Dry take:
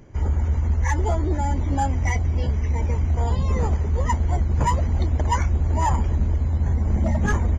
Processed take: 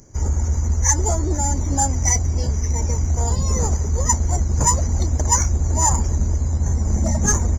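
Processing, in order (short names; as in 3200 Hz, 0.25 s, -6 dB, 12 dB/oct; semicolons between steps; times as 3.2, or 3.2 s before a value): resonant high shelf 4400 Hz +13 dB, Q 3; in parallel at -7 dB: crossover distortion -34.5 dBFS; on the sum: gain -1.5 dB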